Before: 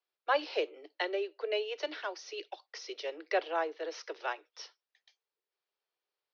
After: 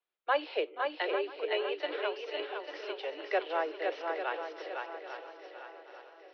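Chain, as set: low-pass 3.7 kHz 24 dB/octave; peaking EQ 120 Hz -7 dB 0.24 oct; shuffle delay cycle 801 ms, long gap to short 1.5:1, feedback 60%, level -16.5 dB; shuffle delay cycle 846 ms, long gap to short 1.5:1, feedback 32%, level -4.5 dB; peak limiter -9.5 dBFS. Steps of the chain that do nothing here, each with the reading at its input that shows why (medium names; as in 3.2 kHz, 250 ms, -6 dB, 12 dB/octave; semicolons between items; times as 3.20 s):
peaking EQ 120 Hz: input has nothing below 270 Hz; peak limiter -9.5 dBFS: peak at its input -17.0 dBFS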